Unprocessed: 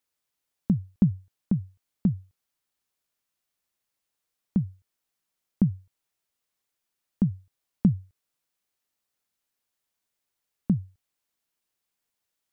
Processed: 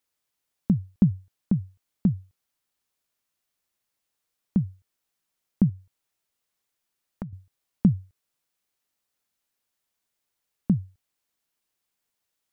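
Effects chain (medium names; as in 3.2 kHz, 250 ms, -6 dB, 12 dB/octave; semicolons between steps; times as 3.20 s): 5.69–7.33 s: compression, threshold -35 dBFS, peak gain reduction 16 dB; trim +1.5 dB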